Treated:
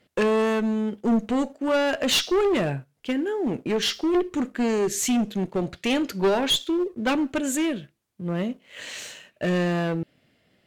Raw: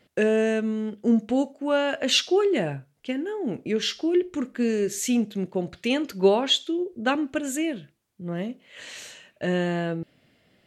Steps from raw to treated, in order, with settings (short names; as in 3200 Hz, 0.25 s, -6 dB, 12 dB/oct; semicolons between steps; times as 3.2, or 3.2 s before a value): one-sided clip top -24.5 dBFS, bottom -13.5 dBFS; sample leveller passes 1